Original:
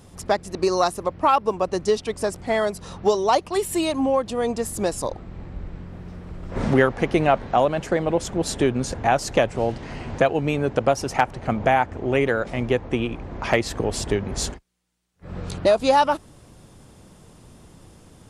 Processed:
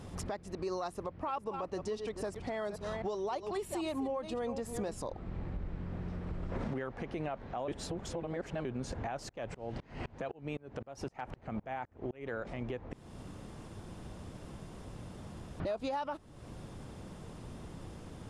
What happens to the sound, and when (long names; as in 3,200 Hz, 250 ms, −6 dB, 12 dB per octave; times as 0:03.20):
0:00.92–0:04.94: delay that plays each chunk backwards 263 ms, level −12 dB
0:07.68–0:08.65: reverse
0:09.29–0:12.34: tremolo with a ramp in dB swelling 3.9 Hz, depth 33 dB
0:12.93–0:15.60: fill with room tone
whole clip: high-shelf EQ 5,700 Hz −11.5 dB; downward compressor 3 to 1, threshold −38 dBFS; brickwall limiter −29.5 dBFS; level +1.5 dB